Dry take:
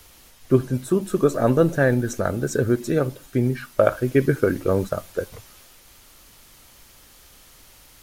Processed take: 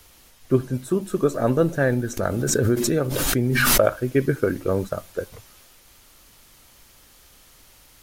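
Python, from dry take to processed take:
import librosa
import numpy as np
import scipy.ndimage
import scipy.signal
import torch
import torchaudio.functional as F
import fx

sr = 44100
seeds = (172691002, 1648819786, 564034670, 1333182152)

y = fx.pre_swell(x, sr, db_per_s=21.0, at=(2.17, 3.98))
y = F.gain(torch.from_numpy(y), -2.0).numpy()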